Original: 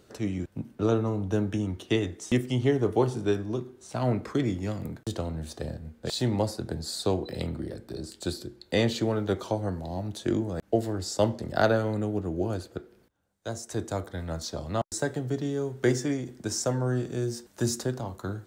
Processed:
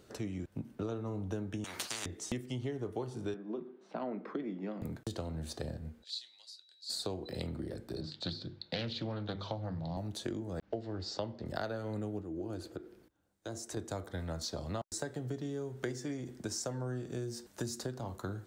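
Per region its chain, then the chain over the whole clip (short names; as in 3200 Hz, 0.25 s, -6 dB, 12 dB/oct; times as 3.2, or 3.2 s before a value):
1.64–2.06 HPF 280 Hz + spectral compressor 10:1
3.34–4.82 elliptic high-pass 170 Hz + air absorption 340 m
6.02–6.89 whine 3900 Hz -55 dBFS + ladder band-pass 4500 Hz, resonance 45%
8.01–9.97 speaker cabinet 100–4900 Hz, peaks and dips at 100 Hz +8 dB, 160 Hz +8 dB, 380 Hz -9 dB, 3700 Hz +7 dB + notches 50/100/150/200/250/300/350/400 Hz + Doppler distortion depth 0.39 ms
10.59–11.46 block floating point 7-bit + LPF 4900 Hz 24 dB/oct
12.22–13.77 bell 320 Hz +9 dB 0.31 oct + compressor 2:1, threshold -39 dBFS
whole clip: dynamic EQ 4400 Hz, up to +4 dB, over -53 dBFS, Q 4.2; compressor 6:1, threshold -33 dBFS; gain -2 dB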